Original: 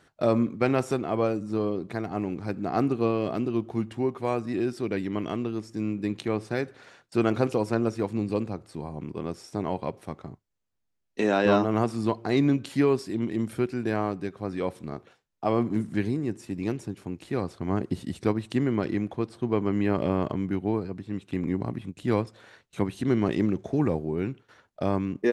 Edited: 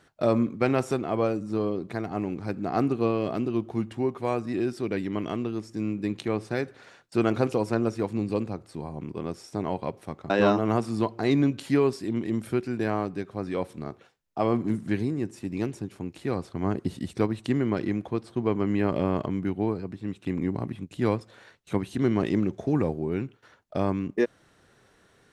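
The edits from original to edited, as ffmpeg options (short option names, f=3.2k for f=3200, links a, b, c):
-filter_complex "[0:a]asplit=2[a][b];[a]atrim=end=10.302[c];[b]atrim=start=11.358[d];[c][d]acrossfade=d=0.004:c1=hsin:c2=hsin"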